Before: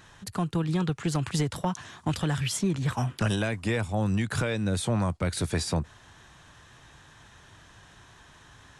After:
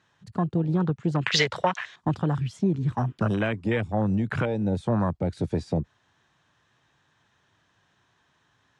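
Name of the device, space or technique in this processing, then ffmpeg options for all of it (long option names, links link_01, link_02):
over-cleaned archive recording: -filter_complex "[0:a]asettb=1/sr,asplit=3[link_01][link_02][link_03];[link_01]atrim=end=1.214[link_04];[link_02]atrim=start=1.21:end=1.96,asetpts=PTS-STARTPTS,afade=type=in:duration=0.004:curve=qsin,afade=type=out:start_time=0.746:duration=0.004:curve=qsin,equalizer=frequency=125:width_type=o:width=1:gain=-4,equalizer=frequency=250:width_type=o:width=1:gain=-12,equalizer=frequency=500:width_type=o:width=1:gain=8,equalizer=frequency=2000:width_type=o:width=1:gain=12,equalizer=frequency=4000:width_type=o:width=1:gain=10,equalizer=frequency=8000:width_type=o:width=1:gain=7[link_05];[link_03]atrim=start=1.956[link_06];[link_04][link_05]acrossfade=duration=0.004:curve1=hsin:curve2=qsin[link_07];[link_07][link_06]acrossfade=duration=0.004:curve1=qsin:curve2=hsin,highpass=110,lowpass=6000,afwtdn=0.0282,volume=3.5dB"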